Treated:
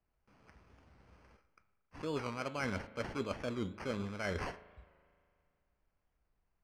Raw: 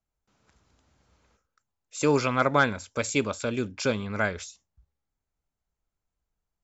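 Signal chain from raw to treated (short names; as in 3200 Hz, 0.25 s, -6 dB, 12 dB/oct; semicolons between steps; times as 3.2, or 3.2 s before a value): sample-and-hold 12×; Bessel low-pass 4100 Hz, order 2; reverse; compressor 16:1, threshold -37 dBFS, peak gain reduction 21.5 dB; reverse; de-hum 107.6 Hz, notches 40; on a send at -18.5 dB: reverb RT60 2.3 s, pre-delay 37 ms; on the sum: record warp 45 rpm, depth 100 cents; gain +3.5 dB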